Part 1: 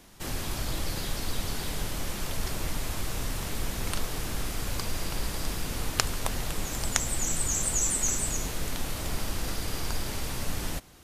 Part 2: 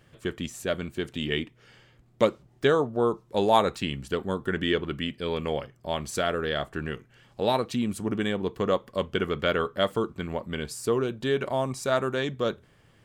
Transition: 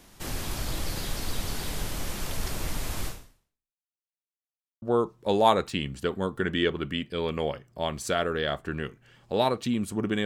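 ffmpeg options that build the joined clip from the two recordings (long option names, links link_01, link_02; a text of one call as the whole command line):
ffmpeg -i cue0.wav -i cue1.wav -filter_complex "[0:a]apad=whole_dur=10.25,atrim=end=10.25,asplit=2[link_01][link_02];[link_01]atrim=end=3.9,asetpts=PTS-STARTPTS,afade=type=out:start_time=3.07:duration=0.83:curve=exp[link_03];[link_02]atrim=start=3.9:end=4.82,asetpts=PTS-STARTPTS,volume=0[link_04];[1:a]atrim=start=2.9:end=8.33,asetpts=PTS-STARTPTS,afade=type=in:duration=0.004:curve=hsin[link_05];[link_03][link_04][link_05]concat=n=3:v=0:a=1" out.wav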